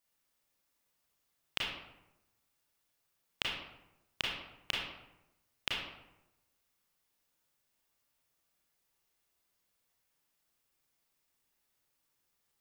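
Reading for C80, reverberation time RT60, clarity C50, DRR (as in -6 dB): 4.0 dB, 0.95 s, 0.0 dB, -4.0 dB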